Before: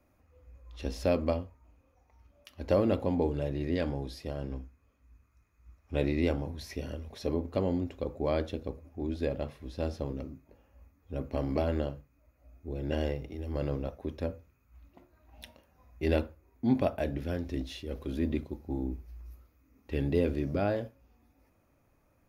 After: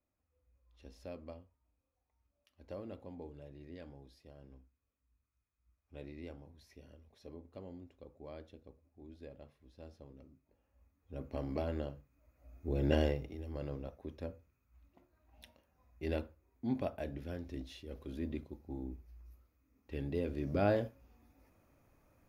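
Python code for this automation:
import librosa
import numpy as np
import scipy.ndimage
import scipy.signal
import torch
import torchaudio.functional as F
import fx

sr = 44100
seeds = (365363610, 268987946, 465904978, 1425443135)

y = fx.gain(x, sr, db=fx.line((10.11, -19.5), (11.28, -7.5), (11.95, -7.5), (12.84, 3.5), (13.58, -9.0), (20.28, -9.0), (20.69, 0.0)))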